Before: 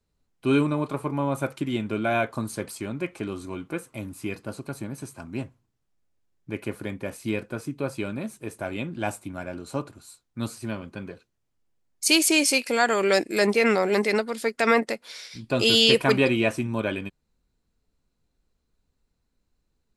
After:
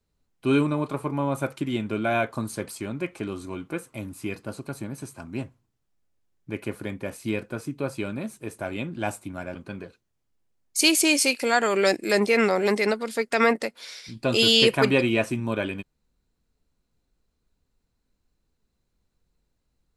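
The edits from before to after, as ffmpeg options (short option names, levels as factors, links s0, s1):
-filter_complex "[0:a]asplit=2[s0][s1];[s0]atrim=end=9.552[s2];[s1]atrim=start=10.818[s3];[s2][s3]acrossfade=d=0.004:c1=hsin:c2=hsin"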